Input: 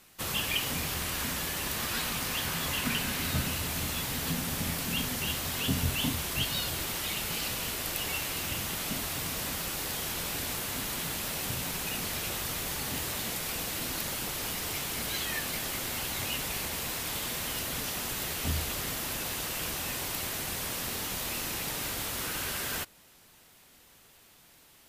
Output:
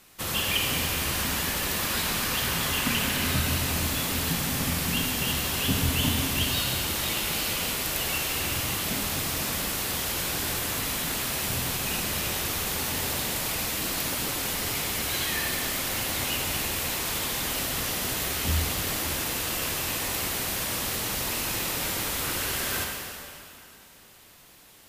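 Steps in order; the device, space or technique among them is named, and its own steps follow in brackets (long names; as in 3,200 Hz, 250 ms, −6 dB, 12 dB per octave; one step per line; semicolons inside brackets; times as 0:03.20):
stairwell (convolution reverb RT60 2.5 s, pre-delay 40 ms, DRR 1 dB)
level +2.5 dB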